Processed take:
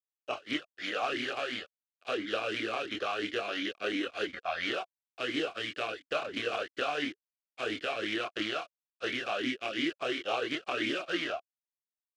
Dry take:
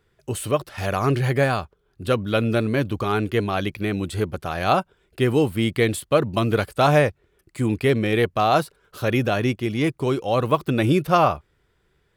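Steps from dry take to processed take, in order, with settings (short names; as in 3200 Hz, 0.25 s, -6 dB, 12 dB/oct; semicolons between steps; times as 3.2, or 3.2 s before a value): spectral contrast lowered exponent 0.19; spectral noise reduction 15 dB; in parallel at +2 dB: limiter -9 dBFS, peak gain reduction 10.5 dB; on the sum: compressor 8:1, threshold -15 dBFS, peak gain reduction 8.5 dB; chorus voices 6, 0.19 Hz, delay 26 ms, depth 2.3 ms; requantised 6-bit, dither none; air absorption 89 m; vowel sweep a-i 2.9 Hz; gain +5.5 dB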